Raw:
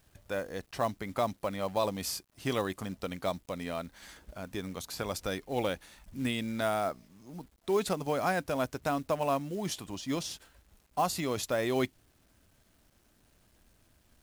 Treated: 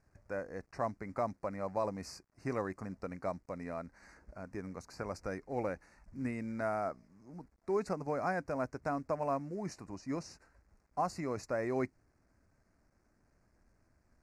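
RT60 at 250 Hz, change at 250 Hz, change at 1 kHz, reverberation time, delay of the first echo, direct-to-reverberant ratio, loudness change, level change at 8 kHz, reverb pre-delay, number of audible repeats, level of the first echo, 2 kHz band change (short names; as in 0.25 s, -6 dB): none, -4.5 dB, -4.5 dB, none, none, none, -5.0 dB, -13.5 dB, none, none, none, -6.5 dB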